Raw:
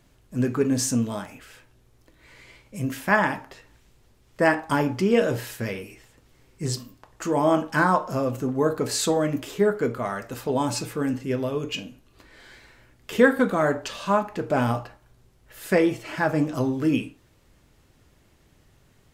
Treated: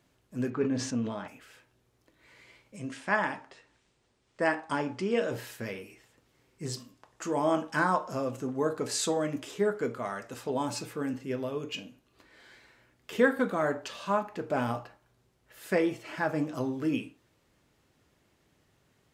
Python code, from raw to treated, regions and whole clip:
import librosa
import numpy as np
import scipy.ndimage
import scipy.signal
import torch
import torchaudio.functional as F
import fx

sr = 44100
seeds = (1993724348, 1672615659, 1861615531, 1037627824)

y = fx.chain(x, sr, fx.lowpass(hz=3600.0, slope=12),
    fx.sustainer(db_per_s=65.0), at=(0.5, 1.28))
y = fx.chain(y, sr, fx.cheby1_lowpass(hz=9100.0, order=4),
    fx.peak_eq(hz=83.0, db=-3.0, octaves=2.6), at=(2.76, 5.32))
y = fx.chain(y, sr, fx.lowpass(hz=9500.0, slope=12),
    fx.high_shelf(hz=5800.0, db=7.0),
    fx.notch(hz=4300.0, q=27.0), at=(6.76, 10.5))
y = fx.highpass(y, sr, hz=160.0, slope=6)
y = fx.high_shelf(y, sr, hz=7800.0, db=-4.0)
y = F.gain(torch.from_numpy(y), -6.0).numpy()